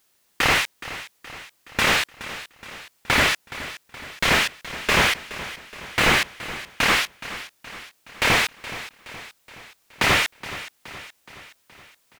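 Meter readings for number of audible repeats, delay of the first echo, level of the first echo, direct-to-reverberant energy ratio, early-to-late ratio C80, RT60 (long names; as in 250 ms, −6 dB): 4, 421 ms, −15.0 dB, no reverb audible, no reverb audible, no reverb audible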